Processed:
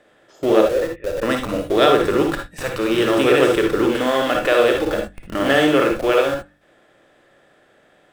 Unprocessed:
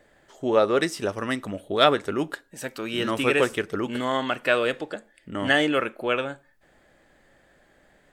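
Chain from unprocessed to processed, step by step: spectral levelling over time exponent 0.6; spectral noise reduction 14 dB; 0.61–1.23 s: cascade formant filter e; dynamic bell 380 Hz, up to +7 dB, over -34 dBFS, Q 1.1; in parallel at -8.5 dB: Schmitt trigger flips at -27.5 dBFS; on the sum: de-hum 49.25 Hz, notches 6; on a send at -3.5 dB: reverberation, pre-delay 49 ms; on the sum: trim -3 dB

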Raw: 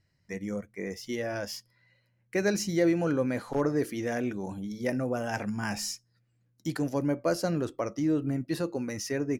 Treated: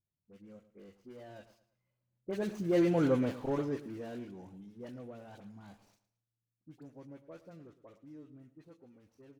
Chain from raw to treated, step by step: median filter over 25 samples; Doppler pass-by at 3.05 s, 10 m/s, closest 3 m; phase dispersion highs, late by 47 ms, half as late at 1.5 kHz; on a send: feedback delay 111 ms, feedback 36%, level -15.5 dB

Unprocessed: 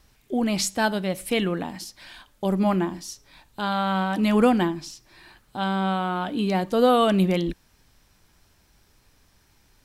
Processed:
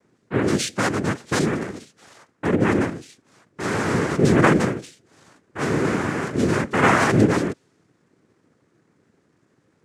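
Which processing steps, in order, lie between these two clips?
level-controlled noise filter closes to 1.5 kHz, open at -19 dBFS; bass shelf 180 Hz +9 dB; noise-vocoded speech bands 3

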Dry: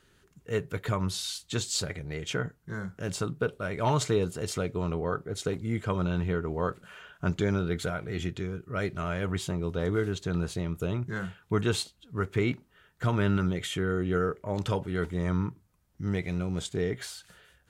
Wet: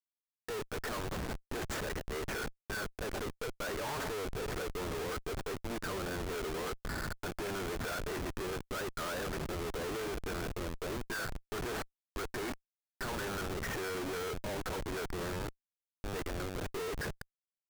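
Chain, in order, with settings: hard clipper -28 dBFS, distortion -9 dB; dynamic bell 6.2 kHz, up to +4 dB, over -51 dBFS, Q 0.98; high-pass 360 Hz 24 dB/octave; resonant high shelf 2.4 kHz -12.5 dB, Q 3; delay 191 ms -20.5 dB; Schmitt trigger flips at -40.5 dBFS

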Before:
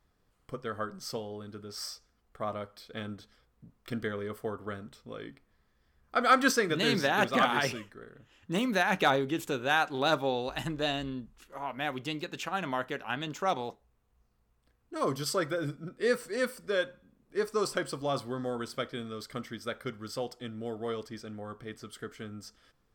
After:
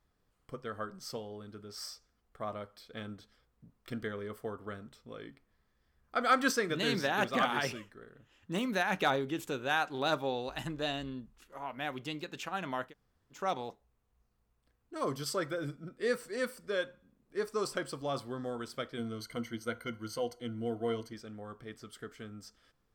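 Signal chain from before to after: 12.89–13.35 s: room tone, crossfade 0.10 s; 18.97–21.13 s: rippled EQ curve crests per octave 1.9, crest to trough 15 dB; trim -4 dB

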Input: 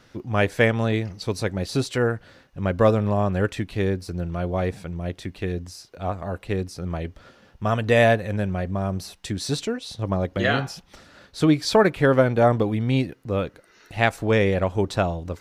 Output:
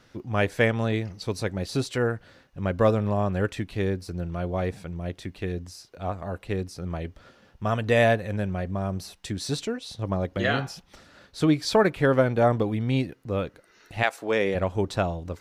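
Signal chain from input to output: 14.02–14.54 s: high-pass 560 Hz -> 190 Hz 12 dB/octave; trim -3 dB

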